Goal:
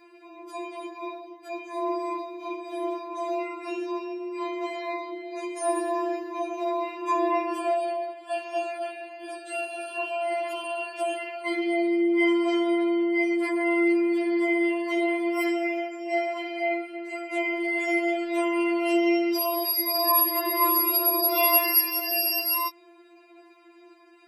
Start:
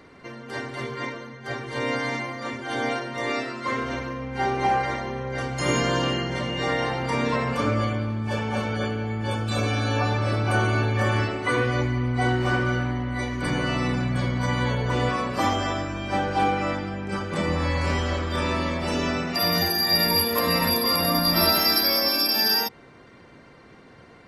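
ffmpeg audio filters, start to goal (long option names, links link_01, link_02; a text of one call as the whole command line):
ffmpeg -i in.wav -af "highshelf=frequency=11000:gain=9,afreqshift=95,afftfilt=real='re*4*eq(mod(b,16),0)':imag='im*4*eq(mod(b,16),0)':win_size=2048:overlap=0.75,volume=-1.5dB" out.wav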